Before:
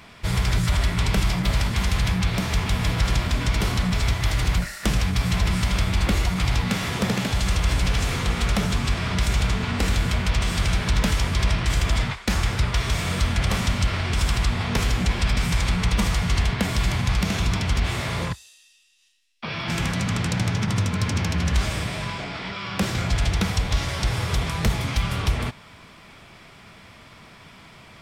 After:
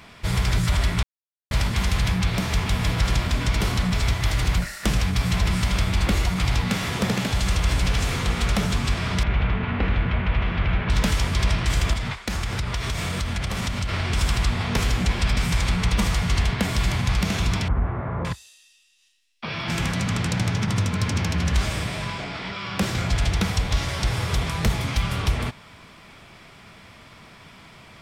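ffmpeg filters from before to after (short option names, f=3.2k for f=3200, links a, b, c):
-filter_complex "[0:a]asettb=1/sr,asplit=3[a][b][c];[a]atrim=end=9.234[d];[b]atrim=start=9.23:end=10.9,asetpts=PTS-STARTPTS,afade=t=in:d=0.004:c=qsin,afade=t=out:st=1.666:d=0.004:c=qsin,lowpass=f=2.8k:w=0.5412,lowpass=f=2.8k:w=1.3066[e];[c]atrim=start=10.896[f];[d][e]acrossfade=d=0.004:c1=hsin:c2=qsin[g];[g][f]acrossfade=d=0.004:c1=qsin:c2=hsin,asettb=1/sr,asplit=3[h][i][j];[h]atrim=end=11.934[k];[i]atrim=start=11.93:end=13.89,asetpts=PTS-STARTPTS,afade=t=in:d=0.004:c=qsin,afade=t=out:st=1.956:d=0.004:c=qsin,acompressor=threshold=-22dB:ratio=6:attack=3.2:release=140:knee=1:detection=peak[l];[j]atrim=start=13.886[m];[k][l]acrossfade=d=0.004:c1=hsin:c2=qsin[n];[n][m]acrossfade=d=0.004:c1=qsin:c2=hsin,asettb=1/sr,asplit=3[o][p][q];[o]atrim=end=17.684[r];[p]atrim=start=17.68:end=18.25,asetpts=PTS-STARTPTS,afade=t=in:d=0.004:c=qsin,afade=t=out:st=0.566:d=0.004:c=qsin,lowpass=f=1.4k:w=0.5412,lowpass=f=1.4k:w=1.3066[s];[q]atrim=start=18.246[t];[r][s]acrossfade=d=0.004:c1=hsin:c2=qsin[u];[u][t]acrossfade=d=0.004:c1=qsin:c2=hsin,asplit=3[v][w][x];[v]atrim=end=1.03,asetpts=PTS-STARTPTS,afade=t=out:st=1.026:d=0.004:c=hsin[y];[w]atrim=start=1.03:end=1.51,asetpts=PTS-STARTPTS,volume=0[z];[x]atrim=start=1.51,asetpts=PTS-STARTPTS,afade=t=in:d=0.004:c=hsin[aa];[y][z][aa]concat=n=3:v=0:a=1"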